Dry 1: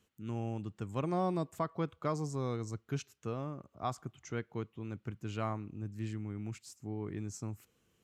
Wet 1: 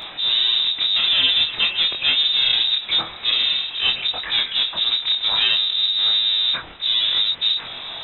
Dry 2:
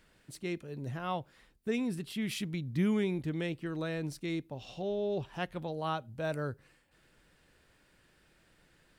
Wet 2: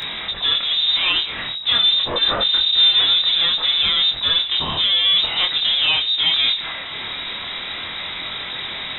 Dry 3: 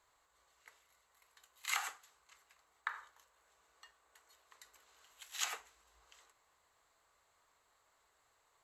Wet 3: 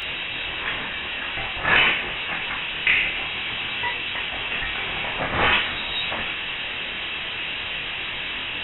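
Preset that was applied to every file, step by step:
power-law curve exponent 0.35; inverted band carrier 3800 Hz; chorus 0.49 Hz, depth 4.6 ms; normalise peaks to -6 dBFS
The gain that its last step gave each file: +13.0, +11.5, +12.5 dB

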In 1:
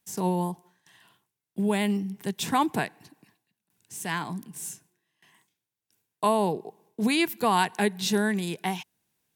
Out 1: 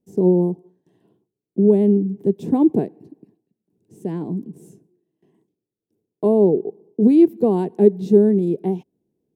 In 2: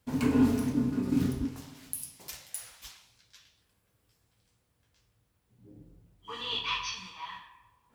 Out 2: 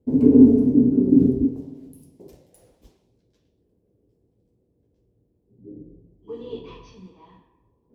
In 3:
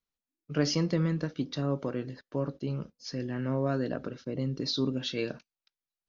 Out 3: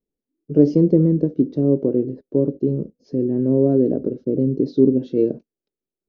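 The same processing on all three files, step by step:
EQ curve 110 Hz 0 dB, 400 Hz +12 dB, 1300 Hz -24 dB; normalise peaks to -1.5 dBFS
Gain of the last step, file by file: +4.0, +4.5, +6.5 dB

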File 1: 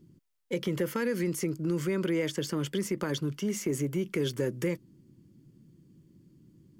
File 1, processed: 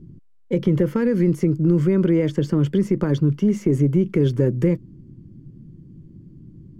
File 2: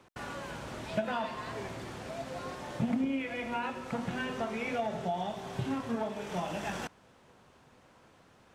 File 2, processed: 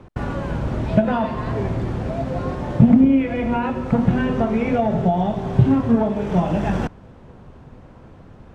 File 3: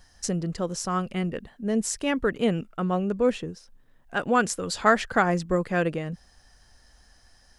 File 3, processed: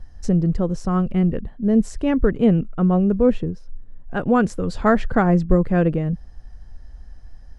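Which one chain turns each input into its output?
tilt -4 dB/oct; match loudness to -20 LUFS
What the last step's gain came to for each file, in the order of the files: +4.0, +10.0, +0.5 dB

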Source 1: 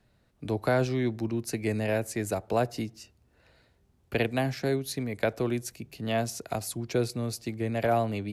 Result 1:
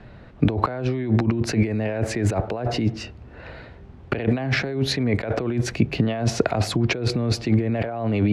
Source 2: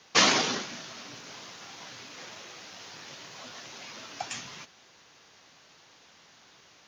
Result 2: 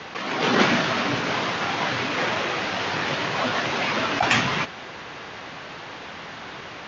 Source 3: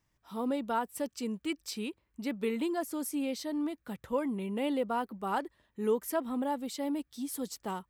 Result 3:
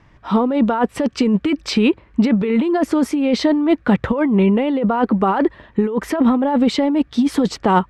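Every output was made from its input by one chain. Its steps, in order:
LPF 2500 Hz 12 dB/oct; negative-ratio compressor -38 dBFS, ratio -1; normalise peaks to -3 dBFS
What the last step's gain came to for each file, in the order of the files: +15.0, +17.5, +22.5 dB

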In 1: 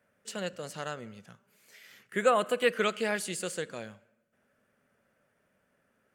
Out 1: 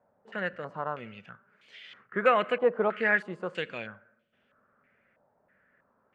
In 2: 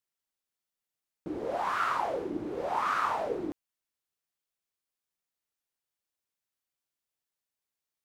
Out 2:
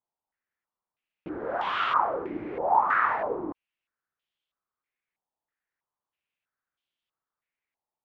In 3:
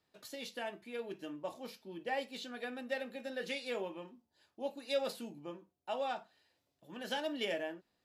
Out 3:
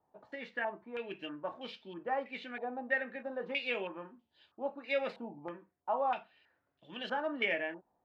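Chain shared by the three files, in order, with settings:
stepped low-pass 3.1 Hz 860–3200 Hz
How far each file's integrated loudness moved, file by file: +2.0, +5.0, +3.5 LU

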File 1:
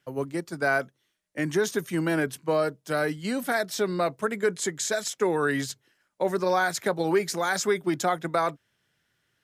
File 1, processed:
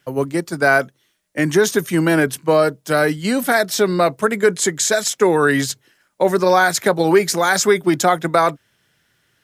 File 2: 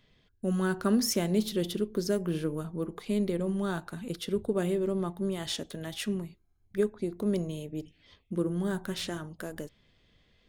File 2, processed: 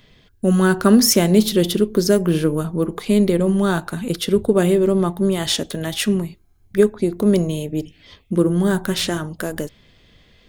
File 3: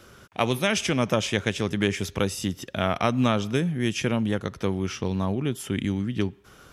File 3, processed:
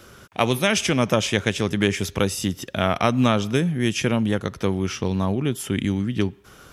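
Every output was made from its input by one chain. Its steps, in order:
high shelf 8800 Hz +3.5 dB; normalise peaks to -2 dBFS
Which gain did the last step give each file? +10.0, +13.0, +3.5 dB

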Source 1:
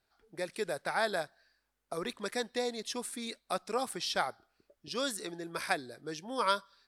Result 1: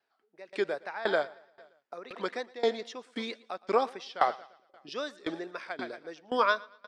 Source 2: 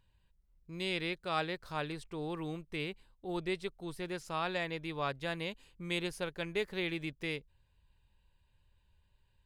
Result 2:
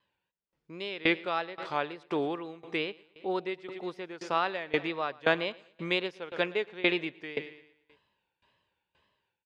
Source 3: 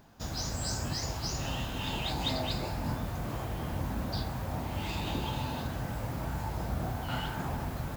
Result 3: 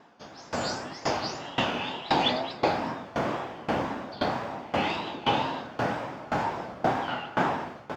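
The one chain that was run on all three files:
HPF 310 Hz 12 dB/oct; notch 4100 Hz, Q 14; dynamic EQ 8900 Hz, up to -5 dB, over -55 dBFS, Q 1.1; AGC gain up to 9 dB; wow and flutter 110 cents; air absorption 150 m; feedback echo 0.115 s, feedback 58%, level -18 dB; dB-ramp tremolo decaying 1.9 Hz, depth 21 dB; normalise peaks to -9 dBFS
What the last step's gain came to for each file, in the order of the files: +3.0, +7.0, +8.5 dB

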